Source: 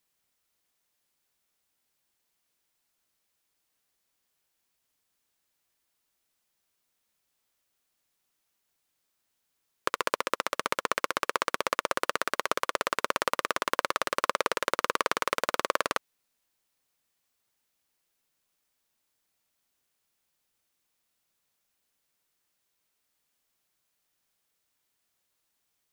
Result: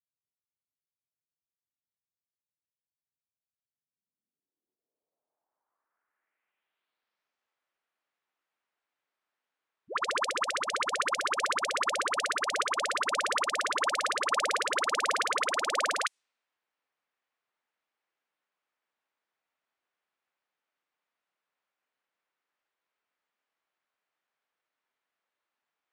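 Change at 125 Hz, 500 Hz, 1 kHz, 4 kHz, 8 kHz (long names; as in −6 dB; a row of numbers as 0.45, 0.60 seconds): below −10 dB, −3.0 dB, 0.0 dB, +2.0 dB, +3.5 dB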